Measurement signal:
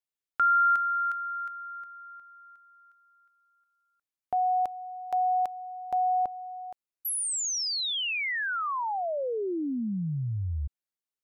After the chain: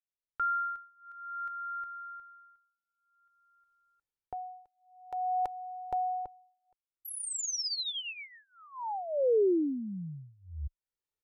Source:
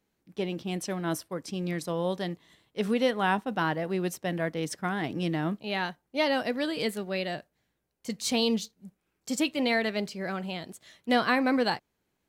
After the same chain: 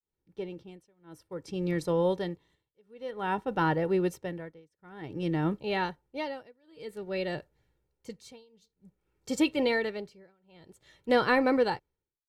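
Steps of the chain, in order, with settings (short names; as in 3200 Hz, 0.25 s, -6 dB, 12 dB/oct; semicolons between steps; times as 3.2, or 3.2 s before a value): opening faded in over 0.78 s; tilt -2 dB/oct; comb 2.2 ms, depth 56%; tremolo 0.53 Hz, depth 99%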